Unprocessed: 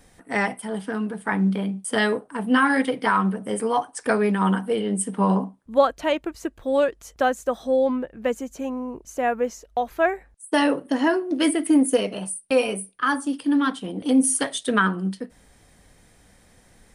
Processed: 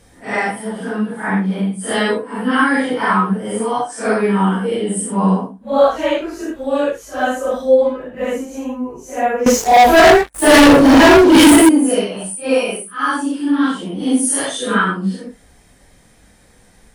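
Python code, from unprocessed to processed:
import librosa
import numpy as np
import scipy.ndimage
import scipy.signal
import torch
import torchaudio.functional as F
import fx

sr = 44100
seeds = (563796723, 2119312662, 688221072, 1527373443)

y = fx.phase_scramble(x, sr, seeds[0], window_ms=200)
y = fx.leveller(y, sr, passes=5, at=(9.46, 11.69))
y = y * 10.0 ** (5.0 / 20.0)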